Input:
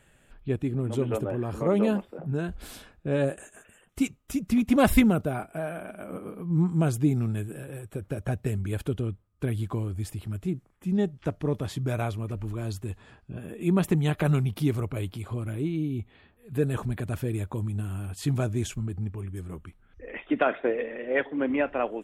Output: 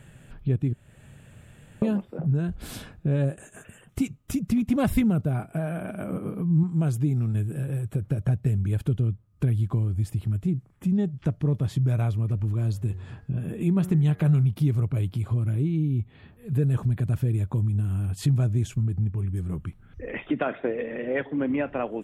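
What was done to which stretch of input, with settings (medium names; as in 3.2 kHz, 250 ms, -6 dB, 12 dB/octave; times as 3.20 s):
0.73–1.82 s: room tone
6.63–7.35 s: bass shelf 220 Hz -7 dB
12.54–14.47 s: de-hum 91.88 Hz, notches 24
whole clip: peaking EQ 130 Hz +13.5 dB 1.5 oct; compression 2:1, threshold -35 dBFS; trim +5 dB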